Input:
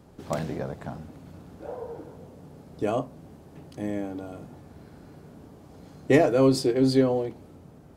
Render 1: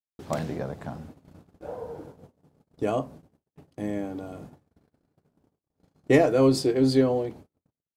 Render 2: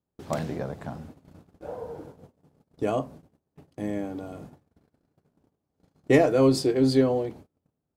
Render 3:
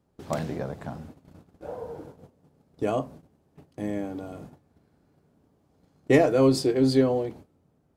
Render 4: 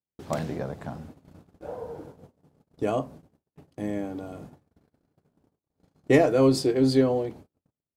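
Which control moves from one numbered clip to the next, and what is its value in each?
noise gate, range: −60, −32, −17, −47 decibels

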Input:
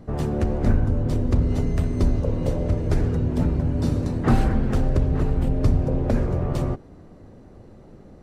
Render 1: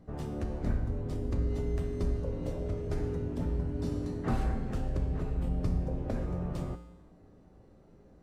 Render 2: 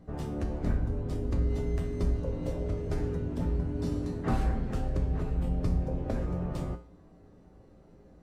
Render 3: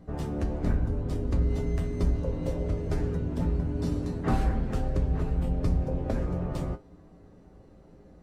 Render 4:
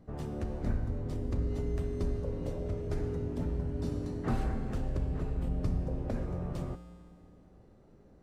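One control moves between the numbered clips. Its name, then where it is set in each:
tuned comb filter, decay: 0.99, 0.43, 0.19, 2.1 seconds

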